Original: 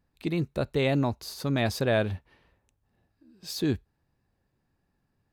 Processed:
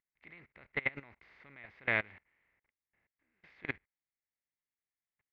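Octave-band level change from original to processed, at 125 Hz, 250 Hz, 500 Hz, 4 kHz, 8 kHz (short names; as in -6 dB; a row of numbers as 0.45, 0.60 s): -22.0 dB, -21.5 dB, -18.0 dB, -17.0 dB, under -35 dB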